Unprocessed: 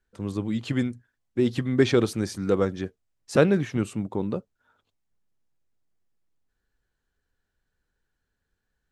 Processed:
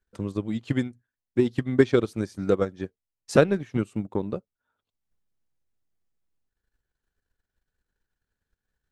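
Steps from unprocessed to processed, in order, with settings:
transient designer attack +7 dB, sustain −9 dB
level −3.5 dB

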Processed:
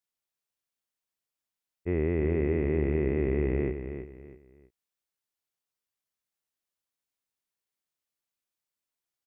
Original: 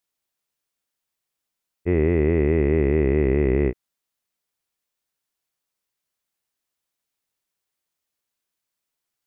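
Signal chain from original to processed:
repeating echo 325 ms, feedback 30%, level −9 dB
level −8 dB

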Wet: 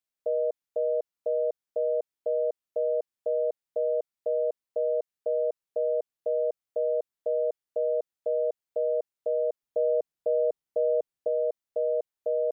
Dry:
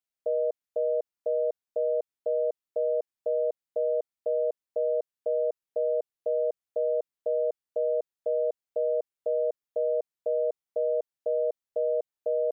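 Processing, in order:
0:09.63–0:11.28: low-shelf EQ 350 Hz +6.5 dB

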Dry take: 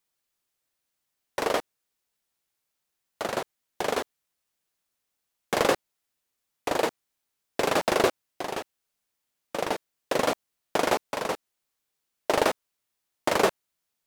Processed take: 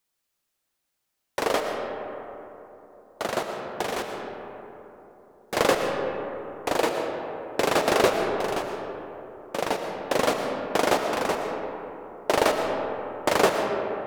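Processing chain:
0:03.84–0:05.57: hard clipping −27 dBFS, distortion −19 dB
on a send: convolution reverb RT60 3.4 s, pre-delay 75 ms, DRR 3.5 dB
on the sum: level +1.5 dB

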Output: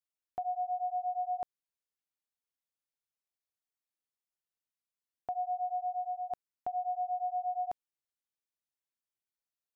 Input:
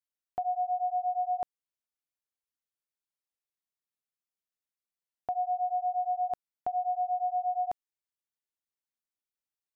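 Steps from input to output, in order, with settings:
0:05.58–0:06.29: high-pass filter 280 Hz → 890 Hz
level −4 dB

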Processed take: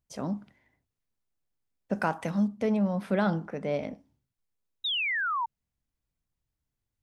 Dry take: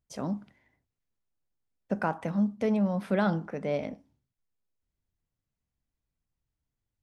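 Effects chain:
0:01.93–0:02.48: high-shelf EQ 2,500 Hz +10 dB
0:04.84–0:05.46: sound drawn into the spectrogram fall 890–3,900 Hz −29 dBFS

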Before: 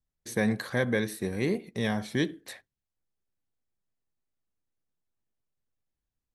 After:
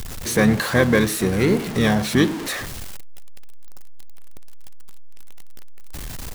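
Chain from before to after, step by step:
converter with a step at zero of −33 dBFS
pitch-shifted copies added −7 semitones −9 dB
level +8.5 dB

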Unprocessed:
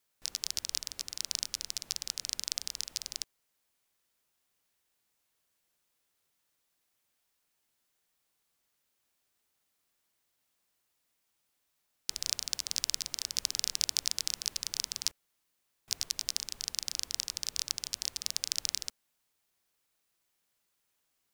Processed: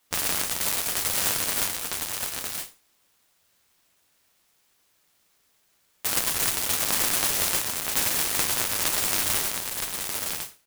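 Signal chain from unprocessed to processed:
peak hold with a decay on every bin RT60 0.61 s
parametric band 8,900 Hz +13 dB 0.57 octaves
in parallel at −2 dB: speech leveller
on the sum: asymmetric clip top −19 dBFS, bottom −4 dBFS
chorus effect 2.1 Hz, delay 20 ms, depth 4 ms
wrong playback speed 7.5 ips tape played at 15 ips
on a send: single-tap delay 961 ms −4.5 dB
on the sum: converter with an unsteady clock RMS 0.02 ms
level +5 dB

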